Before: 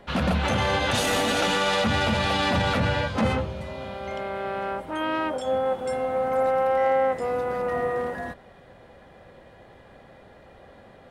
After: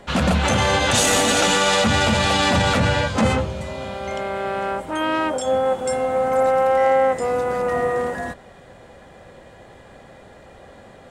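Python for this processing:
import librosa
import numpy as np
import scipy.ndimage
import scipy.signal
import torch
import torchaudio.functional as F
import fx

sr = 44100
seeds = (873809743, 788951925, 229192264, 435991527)

y = fx.peak_eq(x, sr, hz=7500.0, db=10.5, octaves=0.74)
y = F.gain(torch.from_numpy(y), 5.0).numpy()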